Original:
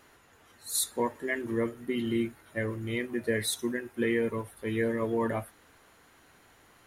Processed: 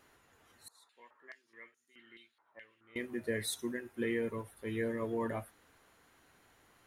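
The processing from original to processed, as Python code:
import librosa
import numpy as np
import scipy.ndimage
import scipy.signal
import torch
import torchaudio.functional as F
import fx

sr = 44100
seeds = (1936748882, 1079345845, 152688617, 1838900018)

y = fx.filter_held_bandpass(x, sr, hz=4.7, low_hz=940.0, high_hz=6500.0, at=(0.68, 2.96))
y = F.gain(torch.from_numpy(y), -6.5).numpy()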